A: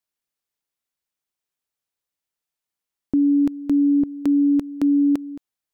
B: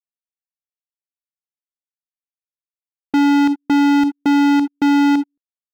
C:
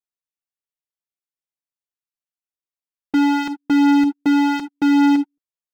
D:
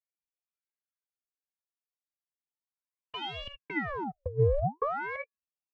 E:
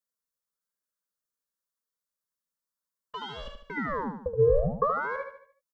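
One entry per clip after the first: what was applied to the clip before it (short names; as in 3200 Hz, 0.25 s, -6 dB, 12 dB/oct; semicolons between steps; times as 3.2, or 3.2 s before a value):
gate -23 dBFS, range -34 dB; sample leveller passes 5; gain +1.5 dB
flange 0.87 Hz, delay 5.3 ms, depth 2.2 ms, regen -15%; gain +1 dB
wah 0.39 Hz 260–1900 Hz, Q 19; negative-ratio compressor -26 dBFS, ratio -0.5; ring modulator with a swept carrier 790 Hz, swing 80%, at 0.57 Hz; gain +4.5 dB
fixed phaser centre 500 Hz, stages 8; feedback echo 74 ms, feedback 42%, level -7 dB; gain +5.5 dB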